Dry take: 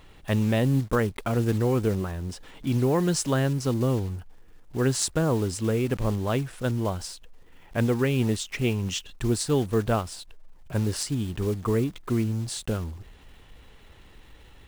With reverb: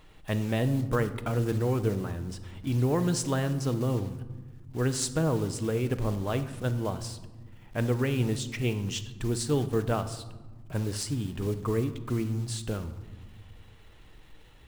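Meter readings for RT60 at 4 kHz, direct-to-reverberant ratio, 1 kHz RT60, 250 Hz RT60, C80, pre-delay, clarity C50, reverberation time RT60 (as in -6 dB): 0.70 s, 9.5 dB, 1.2 s, 2.2 s, 15.0 dB, 6 ms, 12.5 dB, 1.3 s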